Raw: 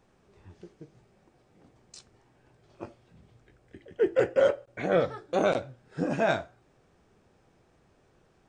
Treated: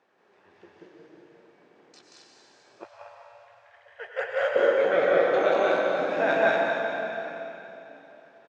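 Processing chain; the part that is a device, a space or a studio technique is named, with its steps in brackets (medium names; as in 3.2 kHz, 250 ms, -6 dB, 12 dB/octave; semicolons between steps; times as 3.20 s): station announcement (band-pass 410–3900 Hz; peaking EQ 1.7 kHz +4.5 dB 0.28 oct; loudspeakers at several distances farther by 62 m -1 dB, 79 m -2 dB; reverberation RT60 3.3 s, pre-delay 86 ms, DRR 0 dB); 2.84–4.56 s: elliptic band-stop 110–600 Hz, stop band 50 dB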